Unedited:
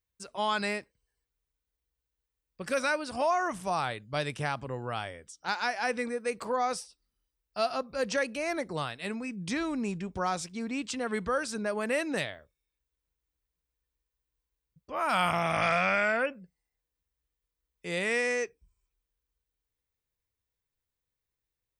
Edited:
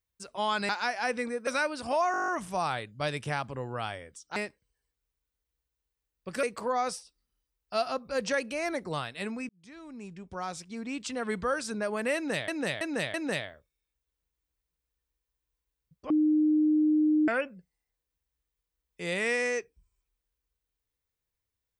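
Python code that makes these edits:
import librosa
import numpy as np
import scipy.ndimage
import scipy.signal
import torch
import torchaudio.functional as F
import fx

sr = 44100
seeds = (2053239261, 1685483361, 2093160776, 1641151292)

y = fx.edit(x, sr, fx.swap(start_s=0.69, length_s=2.07, other_s=5.49, other_length_s=0.78),
    fx.stutter(start_s=3.41, slice_s=0.02, count=9),
    fx.fade_in_span(start_s=9.33, length_s=1.83),
    fx.repeat(start_s=11.99, length_s=0.33, count=4),
    fx.bleep(start_s=14.95, length_s=1.18, hz=306.0, db=-20.5), tone=tone)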